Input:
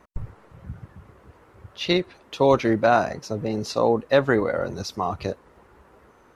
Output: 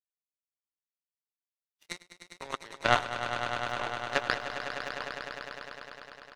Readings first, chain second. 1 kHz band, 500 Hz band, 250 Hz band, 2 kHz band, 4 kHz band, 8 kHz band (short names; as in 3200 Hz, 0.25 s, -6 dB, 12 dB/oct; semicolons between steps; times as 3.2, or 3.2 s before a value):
-7.0 dB, -16.0 dB, -20.0 dB, -2.5 dB, -4.5 dB, -5.5 dB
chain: Bessel high-pass 1200 Hz, order 2; band shelf 3500 Hz -9 dB 1.1 oct; comb 6.7 ms, depth 67%; power-law curve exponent 3; on a send: swelling echo 0.101 s, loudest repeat 5, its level -11 dB; on the sum: gain +8 dB